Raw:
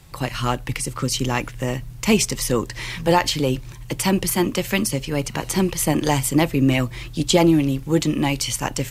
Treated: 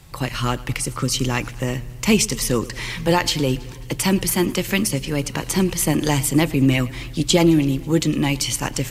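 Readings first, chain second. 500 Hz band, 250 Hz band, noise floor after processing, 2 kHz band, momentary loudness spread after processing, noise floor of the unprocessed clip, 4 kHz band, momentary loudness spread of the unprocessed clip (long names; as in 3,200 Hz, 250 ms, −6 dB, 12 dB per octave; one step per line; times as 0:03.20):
−0.5 dB, +1.0 dB, −35 dBFS, +1.0 dB, 8 LU, −37 dBFS, +1.5 dB, 9 LU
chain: dynamic equaliser 740 Hz, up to −5 dB, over −31 dBFS, Q 1.1
feedback echo with a swinging delay time 109 ms, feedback 65%, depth 82 cents, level −20.5 dB
level +1.5 dB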